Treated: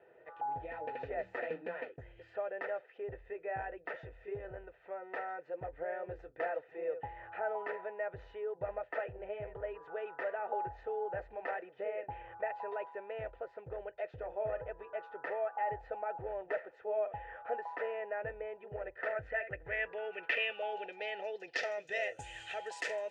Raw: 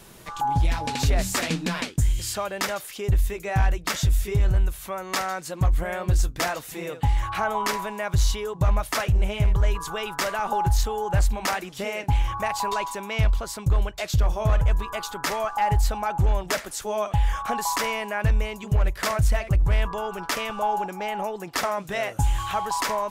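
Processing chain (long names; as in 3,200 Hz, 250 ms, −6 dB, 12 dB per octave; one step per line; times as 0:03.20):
formant filter e
parametric band 210 Hz −12.5 dB 0.85 octaves
notch comb filter 560 Hz
low-pass filter sweep 1,100 Hz → 8,000 Hz, 0:18.84–0:22.25
level +4.5 dB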